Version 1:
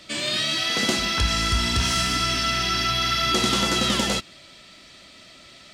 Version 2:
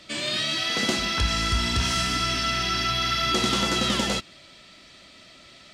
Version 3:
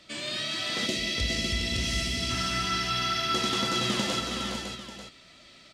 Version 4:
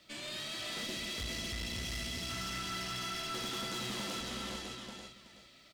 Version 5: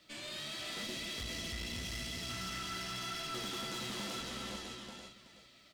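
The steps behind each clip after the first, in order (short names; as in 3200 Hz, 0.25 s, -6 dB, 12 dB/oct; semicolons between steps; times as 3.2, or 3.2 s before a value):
high shelf 8800 Hz -5.5 dB; gain -1.5 dB
on a send: tapped delay 0.188/0.412/0.555/0.891 s -9.5/-6/-6/-12 dB; on the sum: spectral gain 0.87–2.3, 710–1800 Hz -12 dB; gain -6 dB
echo 0.374 s -9.5 dB; bit-crush 11-bit; tube stage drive 31 dB, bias 0.6; gain -4.5 dB
flange 0.93 Hz, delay 5.7 ms, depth 9 ms, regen +69%; gain +2.5 dB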